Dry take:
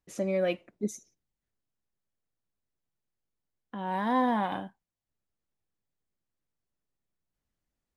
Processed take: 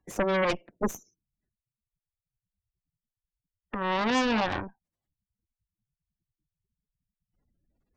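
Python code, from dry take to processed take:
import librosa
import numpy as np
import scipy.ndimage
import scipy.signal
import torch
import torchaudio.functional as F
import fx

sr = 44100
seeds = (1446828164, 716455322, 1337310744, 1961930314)

y = fx.spec_gate(x, sr, threshold_db=-20, keep='strong')
y = fx.cheby_harmonics(y, sr, harmonics=(8,), levels_db=(-9,), full_scale_db=-16.5)
y = fx.band_squash(y, sr, depth_pct=40)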